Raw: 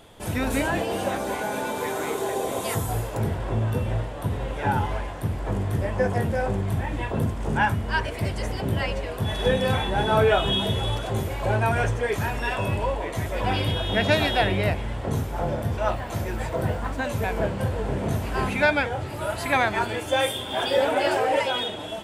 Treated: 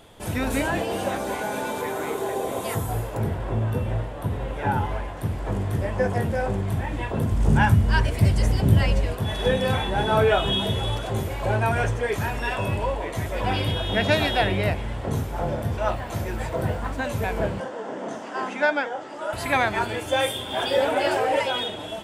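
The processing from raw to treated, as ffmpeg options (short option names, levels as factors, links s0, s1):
-filter_complex "[0:a]asettb=1/sr,asplit=3[s0][s1][s2];[s0]atrim=end=1.814[s3];[s1]atrim=start=1.81:end=5.17,asetpts=PTS-STARTPTS,afade=t=in:d=0.004:c=qsin,afade=t=out:st=3.356:d=0.004:c=qsin,equalizer=f=6100:t=o:w=2.1:g=-4.5[s4];[s2]atrim=start=5.166[s5];[s3][s4]acrossfade=d=0.004:c1=hsin:c2=qsin[s6];[s6][s5]acrossfade=d=0.004:c1=qsin:c2=hsin,asettb=1/sr,asplit=3[s7][s8][s9];[s7]atrim=end=7.314[s10];[s8]atrim=start=7.31:end=9.15,asetpts=PTS-STARTPTS,afade=t=in:d=0.004:c=qsin,afade=t=out:st=1.836:d=0.004:c=qsin,bass=f=250:g=10,treble=f=4000:g=5[s11];[s9]atrim=start=9.146[s12];[s10][s11]acrossfade=d=0.004:c1=hsin:c2=qsin[s13];[s13][s12]acrossfade=d=0.004:c1=qsin:c2=hsin,asettb=1/sr,asplit=3[s14][s15][s16];[s14]atrim=end=17.604[s17];[s15]atrim=start=17.6:end=19.33,asetpts=PTS-STARTPTS,afade=t=in:d=0.004:c=qsin,afade=t=out:st=1.726:d=0.004:c=qsin,highpass=f=260:w=0.5412,highpass=f=260:w=1.3066,equalizer=f=400:t=q:w=4:g=-6,equalizer=f=2400:t=q:w=4:g=-9,equalizer=f=4100:t=q:w=4:g=-9,lowpass=f=7100:w=0.5412,lowpass=f=7100:w=1.3066[s18];[s16]atrim=start=19.326[s19];[s17][s18]acrossfade=d=0.004:c1=hsin:c2=qsin[s20];[s20][s19]acrossfade=d=0.004:c1=qsin:c2=hsin"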